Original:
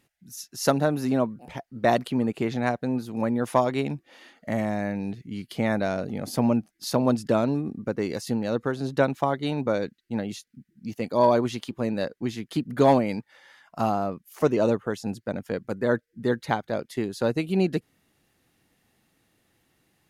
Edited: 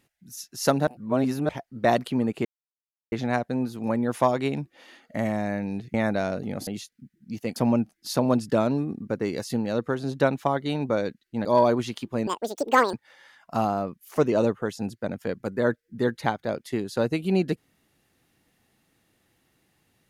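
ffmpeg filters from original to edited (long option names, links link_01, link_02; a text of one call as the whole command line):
ffmpeg -i in.wav -filter_complex "[0:a]asplit=10[link_01][link_02][link_03][link_04][link_05][link_06][link_07][link_08][link_09][link_10];[link_01]atrim=end=0.872[link_11];[link_02]atrim=start=0.868:end=1.492,asetpts=PTS-STARTPTS,areverse[link_12];[link_03]atrim=start=1.488:end=2.45,asetpts=PTS-STARTPTS,afade=type=out:start_time=0.958:duration=0.004:curve=hsin,apad=pad_dur=0.67[link_13];[link_04]atrim=start=2.45:end=5.272,asetpts=PTS-STARTPTS,afade=type=in:duration=0.004:curve=hsin[link_14];[link_05]atrim=start=5.598:end=6.332[link_15];[link_06]atrim=start=10.218:end=11.112[link_16];[link_07]atrim=start=6.328:end=10.222[link_17];[link_08]atrim=start=11.108:end=11.934[link_18];[link_09]atrim=start=11.93:end=13.18,asetpts=PTS-STARTPTS,asetrate=82908,aresample=44100[link_19];[link_10]atrim=start=13.176[link_20];[link_11][link_12]acrossfade=duration=0.004:curve1=hsin:curve2=hsin[link_21];[link_13][link_14]concat=n=2:v=0:a=1[link_22];[link_21][link_22]acrossfade=duration=0.004:curve1=hsin:curve2=hsin[link_23];[link_23][link_15]acrossfade=duration=0.004:curve1=hsin:curve2=hsin[link_24];[link_24][link_16]acrossfade=duration=0.004:curve1=hsin:curve2=hsin[link_25];[link_25][link_17]acrossfade=duration=0.004:curve1=hsin:curve2=hsin[link_26];[link_26][link_18]acrossfade=duration=0.004:curve1=hsin:curve2=hsin[link_27];[link_27][link_19]acrossfade=duration=0.004:curve1=hsin:curve2=hsin[link_28];[link_28][link_20]acrossfade=duration=0.004:curve1=hsin:curve2=hsin" out.wav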